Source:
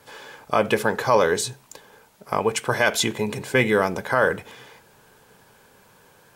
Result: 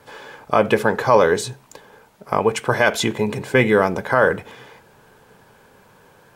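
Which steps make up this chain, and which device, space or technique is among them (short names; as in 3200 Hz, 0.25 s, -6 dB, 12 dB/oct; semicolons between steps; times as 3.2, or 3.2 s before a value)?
behind a face mask (high shelf 3000 Hz -8 dB); gain +4.5 dB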